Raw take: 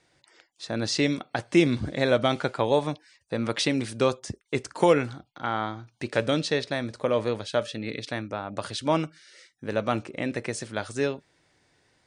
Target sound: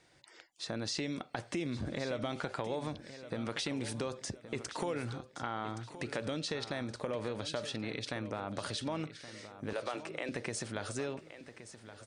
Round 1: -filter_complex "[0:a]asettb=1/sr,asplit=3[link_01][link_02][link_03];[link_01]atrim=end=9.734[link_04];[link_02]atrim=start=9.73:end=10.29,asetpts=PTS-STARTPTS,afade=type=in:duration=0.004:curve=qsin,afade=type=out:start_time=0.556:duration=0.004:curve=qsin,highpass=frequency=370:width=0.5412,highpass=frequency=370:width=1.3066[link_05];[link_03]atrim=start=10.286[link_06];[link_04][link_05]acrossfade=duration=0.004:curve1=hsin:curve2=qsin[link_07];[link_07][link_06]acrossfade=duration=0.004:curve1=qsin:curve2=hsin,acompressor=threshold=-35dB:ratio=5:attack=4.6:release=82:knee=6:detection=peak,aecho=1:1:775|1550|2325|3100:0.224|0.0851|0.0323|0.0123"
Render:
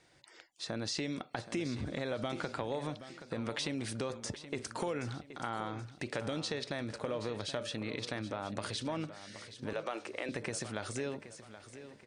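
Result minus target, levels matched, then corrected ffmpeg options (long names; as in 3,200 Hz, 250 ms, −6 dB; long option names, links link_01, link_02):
echo 346 ms early
-filter_complex "[0:a]asettb=1/sr,asplit=3[link_01][link_02][link_03];[link_01]atrim=end=9.734[link_04];[link_02]atrim=start=9.73:end=10.29,asetpts=PTS-STARTPTS,afade=type=in:duration=0.004:curve=qsin,afade=type=out:start_time=0.556:duration=0.004:curve=qsin,highpass=frequency=370:width=0.5412,highpass=frequency=370:width=1.3066[link_05];[link_03]atrim=start=10.286[link_06];[link_04][link_05]acrossfade=duration=0.004:curve1=hsin:curve2=qsin[link_07];[link_07][link_06]acrossfade=duration=0.004:curve1=qsin:curve2=hsin,acompressor=threshold=-35dB:ratio=5:attack=4.6:release=82:knee=6:detection=peak,aecho=1:1:1121|2242|3363|4484:0.224|0.0851|0.0323|0.0123"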